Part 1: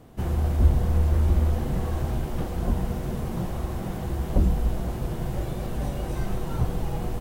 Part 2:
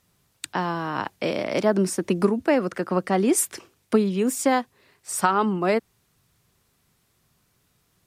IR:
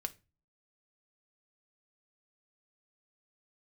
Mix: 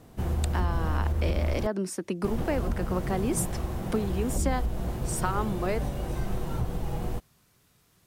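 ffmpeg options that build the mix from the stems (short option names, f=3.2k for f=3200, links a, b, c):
-filter_complex "[0:a]alimiter=limit=-17.5dB:level=0:latency=1:release=165,volume=-2dB,asplit=3[a][b][c];[a]atrim=end=1.67,asetpts=PTS-STARTPTS,afade=t=out:st=1.666:d=0.004:c=hsin[d];[b]atrim=start=1.67:end=2.24,asetpts=PTS-STARTPTS,volume=0[e];[c]atrim=start=2.24,asetpts=PTS-STARTPTS,afade=t=in:d=0.004:c=hsin[f];[d][e][f]concat=n=3:v=0:a=1[g];[1:a]acompressor=threshold=-48dB:ratio=1.5,volume=2dB[h];[g][h]amix=inputs=2:normalize=0"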